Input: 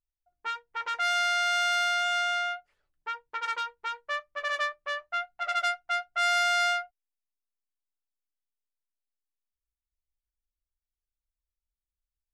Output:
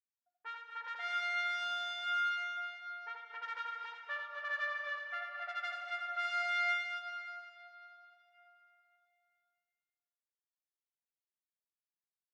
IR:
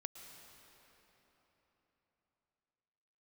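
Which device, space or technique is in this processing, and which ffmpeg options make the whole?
station announcement: -filter_complex "[0:a]highpass=370,lowpass=4.2k,equalizer=f=1.7k:t=o:w=0.33:g=8,aecho=1:1:81.63|239.1:0.562|0.398[a];[1:a]atrim=start_sample=2205[b];[a][b]afir=irnorm=-1:irlink=0,asettb=1/sr,asplit=3[c][d][e];[c]atrim=end=1.044[f];[d]atrim=start=1.04:end=1.6,asetpts=PTS-STARTPTS,afade=t=in:d=0.004:c=qsin,afade=t=out:st=0.556:d=0.004:c=qsin,bandreject=f=920:w=18[g];[e]atrim=start=1.596[h];[f][g]acrossfade=d=0.004:c1=hsin:c2=qsin[i];[i][h]acrossfade=d=0.004:c1=qsin:c2=hsin,volume=-9dB"

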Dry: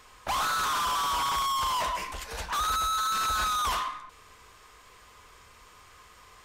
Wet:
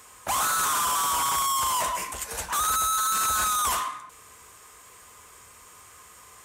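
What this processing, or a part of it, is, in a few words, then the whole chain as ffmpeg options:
budget condenser microphone: -af "highpass=72,highshelf=f=6.1k:t=q:w=1.5:g=9,volume=2dB"

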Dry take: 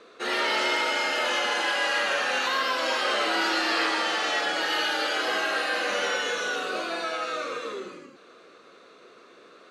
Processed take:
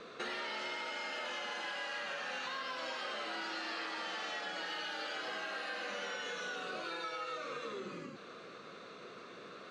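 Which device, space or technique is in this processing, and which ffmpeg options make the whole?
jukebox: -filter_complex "[0:a]asettb=1/sr,asplit=3[a][b][c];[a]atrim=end=6.844[d];[b]atrim=start=6.84:end=7.38,asetpts=PTS-STARTPTS,afade=t=in:d=0.004:c=qsin,afade=t=out:st=0.536:d=0.004:c=qsin,aecho=1:1:2.2:0.77,atrim=end_sample=23814[e];[c]atrim=start=7.376[f];[d][e]acrossfade=d=0.004:c1=hsin:c2=qsin[g];[g][f]acrossfade=d=0.004:c1=qsin:c2=hsin,lowpass=7k,lowshelf=f=230:t=q:w=1.5:g=6.5,acompressor=threshold=-41dB:ratio=6,volume=1.5dB"

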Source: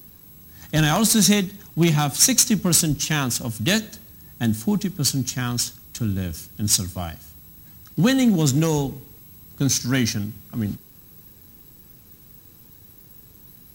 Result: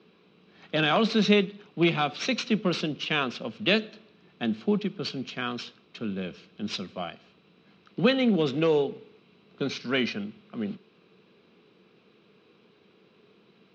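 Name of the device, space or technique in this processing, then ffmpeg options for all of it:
kitchen radio: -filter_complex "[0:a]highpass=190,equalizer=f=190:t=q:w=4:g=5,equalizer=f=280:t=q:w=4:g=-8,equalizer=f=420:t=q:w=4:g=5,equalizer=f=870:t=q:w=4:g=-8,equalizer=f=1.8k:t=q:w=4:g=-8,equalizer=f=2.5k:t=q:w=4:g=3,lowpass=f=3.6k:w=0.5412,lowpass=f=3.6k:w=1.3066,acrossover=split=230 5600:gain=0.178 1 0.1[a][b][c];[a][b][c]amix=inputs=3:normalize=0,volume=1dB"

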